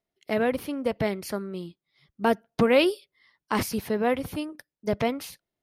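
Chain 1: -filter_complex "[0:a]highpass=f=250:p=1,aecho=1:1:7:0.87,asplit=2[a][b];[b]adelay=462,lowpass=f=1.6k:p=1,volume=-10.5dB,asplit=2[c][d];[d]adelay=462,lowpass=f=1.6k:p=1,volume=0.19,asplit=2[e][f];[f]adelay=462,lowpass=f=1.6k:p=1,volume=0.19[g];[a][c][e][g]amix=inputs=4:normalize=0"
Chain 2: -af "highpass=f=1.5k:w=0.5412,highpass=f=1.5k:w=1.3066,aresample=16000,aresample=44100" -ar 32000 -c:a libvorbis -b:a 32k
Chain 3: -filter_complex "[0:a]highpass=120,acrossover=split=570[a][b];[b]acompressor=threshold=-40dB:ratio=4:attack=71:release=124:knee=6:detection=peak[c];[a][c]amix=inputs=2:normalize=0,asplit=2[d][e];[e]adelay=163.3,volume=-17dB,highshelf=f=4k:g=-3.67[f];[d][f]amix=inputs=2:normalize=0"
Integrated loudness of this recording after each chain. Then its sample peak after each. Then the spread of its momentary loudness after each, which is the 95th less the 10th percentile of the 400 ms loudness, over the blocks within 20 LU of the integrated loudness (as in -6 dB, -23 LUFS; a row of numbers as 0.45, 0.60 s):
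-26.5, -35.5, -29.5 LUFS; -6.0, -12.5, -12.5 dBFS; 15, 19, 14 LU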